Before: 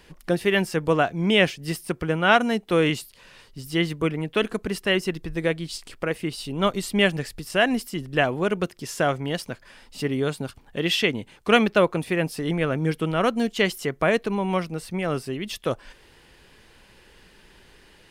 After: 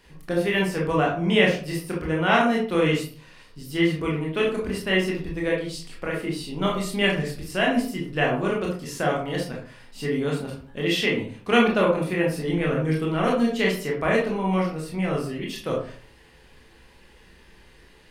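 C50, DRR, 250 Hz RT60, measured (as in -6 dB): 5.0 dB, -3.5 dB, 0.55 s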